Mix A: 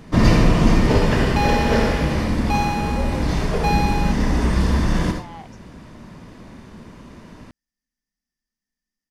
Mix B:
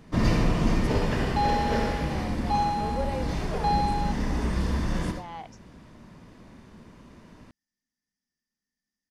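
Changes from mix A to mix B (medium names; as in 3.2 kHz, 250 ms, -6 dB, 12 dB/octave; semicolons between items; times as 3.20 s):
first sound -8.5 dB; second sound: add two resonant band-passes 1.8 kHz, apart 2.1 oct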